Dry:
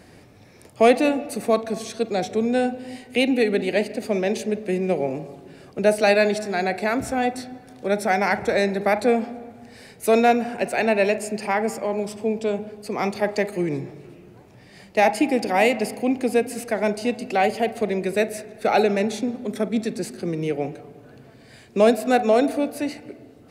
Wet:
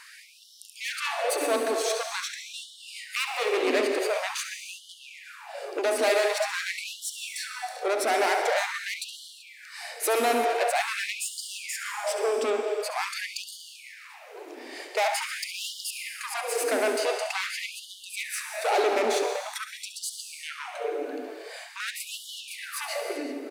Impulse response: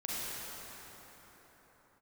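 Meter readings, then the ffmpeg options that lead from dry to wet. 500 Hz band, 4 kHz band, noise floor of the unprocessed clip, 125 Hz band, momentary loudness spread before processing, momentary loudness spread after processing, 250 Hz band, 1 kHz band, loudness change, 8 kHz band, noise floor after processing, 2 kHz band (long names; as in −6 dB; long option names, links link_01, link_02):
−7.0 dB, +2.0 dB, −49 dBFS, below −30 dB, 11 LU, 16 LU, −16.0 dB, −5.5 dB, −6.0 dB, +4.0 dB, −49 dBFS, −3.0 dB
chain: -filter_complex "[0:a]acompressor=threshold=-28dB:ratio=1.5,asplit=2[link_01][link_02];[link_02]adelay=384.8,volume=-13dB,highshelf=frequency=4000:gain=-8.66[link_03];[link_01][link_03]amix=inputs=2:normalize=0,asoftclip=type=tanh:threshold=-29dB,asplit=2[link_04][link_05];[1:a]atrim=start_sample=2205,afade=type=out:start_time=0.35:duration=0.01,atrim=end_sample=15876,adelay=69[link_06];[link_05][link_06]afir=irnorm=-1:irlink=0,volume=-7dB[link_07];[link_04][link_07]amix=inputs=2:normalize=0,afftfilt=real='re*gte(b*sr/1024,240*pow(2900/240,0.5+0.5*sin(2*PI*0.46*pts/sr)))':imag='im*gte(b*sr/1024,240*pow(2900/240,0.5+0.5*sin(2*PI*0.46*pts/sr)))':win_size=1024:overlap=0.75,volume=7.5dB"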